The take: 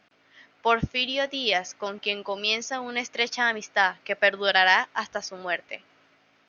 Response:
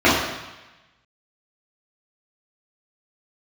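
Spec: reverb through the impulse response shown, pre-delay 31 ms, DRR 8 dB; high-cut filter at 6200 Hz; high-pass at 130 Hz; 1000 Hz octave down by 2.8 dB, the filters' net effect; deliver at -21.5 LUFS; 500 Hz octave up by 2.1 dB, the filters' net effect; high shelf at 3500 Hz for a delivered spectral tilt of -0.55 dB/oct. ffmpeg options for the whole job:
-filter_complex "[0:a]highpass=130,lowpass=6.2k,equalizer=f=500:t=o:g=4.5,equalizer=f=1k:t=o:g=-5.5,highshelf=f=3.5k:g=-5.5,asplit=2[a][b];[1:a]atrim=start_sample=2205,adelay=31[c];[b][c]afir=irnorm=-1:irlink=0,volume=-34dB[d];[a][d]amix=inputs=2:normalize=0,volume=4.5dB"

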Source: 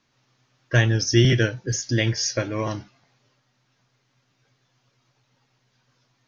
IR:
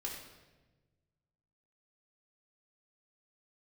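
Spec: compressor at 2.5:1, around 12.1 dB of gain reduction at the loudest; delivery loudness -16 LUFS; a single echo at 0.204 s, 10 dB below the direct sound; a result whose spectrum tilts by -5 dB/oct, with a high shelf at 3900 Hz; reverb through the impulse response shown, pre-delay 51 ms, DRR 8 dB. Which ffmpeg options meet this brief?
-filter_complex "[0:a]highshelf=f=3.9k:g=-8,acompressor=threshold=-31dB:ratio=2.5,aecho=1:1:204:0.316,asplit=2[a][b];[1:a]atrim=start_sample=2205,adelay=51[c];[b][c]afir=irnorm=-1:irlink=0,volume=-8dB[d];[a][d]amix=inputs=2:normalize=0,volume=15.5dB"

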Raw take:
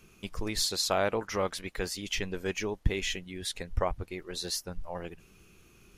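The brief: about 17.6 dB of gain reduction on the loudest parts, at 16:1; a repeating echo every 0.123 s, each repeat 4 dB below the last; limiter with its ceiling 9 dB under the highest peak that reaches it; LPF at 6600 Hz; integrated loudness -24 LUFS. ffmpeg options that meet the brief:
-af "lowpass=6.6k,acompressor=threshold=-38dB:ratio=16,alimiter=level_in=11dB:limit=-24dB:level=0:latency=1,volume=-11dB,aecho=1:1:123|246|369|492|615|738|861|984|1107:0.631|0.398|0.25|0.158|0.0994|0.0626|0.0394|0.0249|0.0157,volume=20dB"

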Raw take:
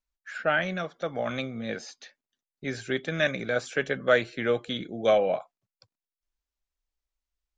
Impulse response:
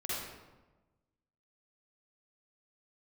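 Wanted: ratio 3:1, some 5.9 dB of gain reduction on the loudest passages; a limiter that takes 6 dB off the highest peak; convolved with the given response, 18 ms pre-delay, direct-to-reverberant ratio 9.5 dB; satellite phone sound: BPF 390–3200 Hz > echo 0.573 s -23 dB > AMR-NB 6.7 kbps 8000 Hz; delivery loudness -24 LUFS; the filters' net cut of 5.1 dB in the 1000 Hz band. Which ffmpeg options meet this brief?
-filter_complex "[0:a]equalizer=f=1k:t=o:g=-8,acompressor=threshold=-27dB:ratio=3,alimiter=limit=-22dB:level=0:latency=1,asplit=2[a][b];[1:a]atrim=start_sample=2205,adelay=18[c];[b][c]afir=irnorm=-1:irlink=0,volume=-13.5dB[d];[a][d]amix=inputs=2:normalize=0,highpass=390,lowpass=3.2k,aecho=1:1:573:0.0708,volume=14dB" -ar 8000 -c:a libopencore_amrnb -b:a 6700

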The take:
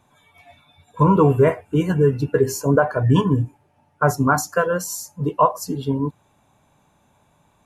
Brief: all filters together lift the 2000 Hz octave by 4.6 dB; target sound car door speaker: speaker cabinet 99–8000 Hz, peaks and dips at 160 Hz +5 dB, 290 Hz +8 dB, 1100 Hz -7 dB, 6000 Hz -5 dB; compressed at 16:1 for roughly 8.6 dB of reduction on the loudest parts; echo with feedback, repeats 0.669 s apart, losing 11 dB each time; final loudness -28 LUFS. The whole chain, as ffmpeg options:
-af "equalizer=f=2k:t=o:g=8.5,acompressor=threshold=-18dB:ratio=16,highpass=99,equalizer=f=160:t=q:w=4:g=5,equalizer=f=290:t=q:w=4:g=8,equalizer=f=1.1k:t=q:w=4:g=-7,equalizer=f=6k:t=q:w=4:g=-5,lowpass=f=8k:w=0.5412,lowpass=f=8k:w=1.3066,aecho=1:1:669|1338|2007:0.282|0.0789|0.0221,volume=-5dB"

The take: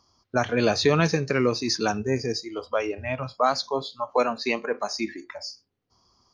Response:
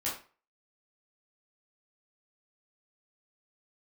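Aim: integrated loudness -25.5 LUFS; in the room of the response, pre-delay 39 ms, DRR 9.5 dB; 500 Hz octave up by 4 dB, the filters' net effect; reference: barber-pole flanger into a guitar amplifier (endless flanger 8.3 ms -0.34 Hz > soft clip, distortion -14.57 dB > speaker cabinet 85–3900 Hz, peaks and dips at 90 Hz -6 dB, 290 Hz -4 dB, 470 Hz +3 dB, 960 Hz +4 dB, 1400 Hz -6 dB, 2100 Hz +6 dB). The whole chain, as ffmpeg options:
-filter_complex "[0:a]equalizer=f=500:t=o:g=3,asplit=2[a][b];[1:a]atrim=start_sample=2205,adelay=39[c];[b][c]afir=irnorm=-1:irlink=0,volume=-14dB[d];[a][d]amix=inputs=2:normalize=0,asplit=2[e][f];[f]adelay=8.3,afreqshift=-0.34[g];[e][g]amix=inputs=2:normalize=1,asoftclip=threshold=-17dB,highpass=85,equalizer=f=90:t=q:w=4:g=-6,equalizer=f=290:t=q:w=4:g=-4,equalizer=f=470:t=q:w=4:g=3,equalizer=f=960:t=q:w=4:g=4,equalizer=f=1.4k:t=q:w=4:g=-6,equalizer=f=2.1k:t=q:w=4:g=6,lowpass=f=3.9k:w=0.5412,lowpass=f=3.9k:w=1.3066,volume=2.5dB"

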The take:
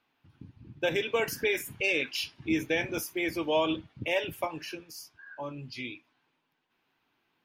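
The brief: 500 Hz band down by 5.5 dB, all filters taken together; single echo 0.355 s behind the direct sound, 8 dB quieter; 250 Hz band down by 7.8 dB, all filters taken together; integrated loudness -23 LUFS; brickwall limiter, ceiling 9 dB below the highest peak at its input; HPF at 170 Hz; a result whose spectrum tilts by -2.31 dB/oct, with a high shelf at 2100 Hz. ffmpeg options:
-af "highpass=170,equalizer=f=250:t=o:g=-9,equalizer=f=500:t=o:g=-4.5,highshelf=f=2.1k:g=4,alimiter=limit=-23.5dB:level=0:latency=1,aecho=1:1:355:0.398,volume=11.5dB"

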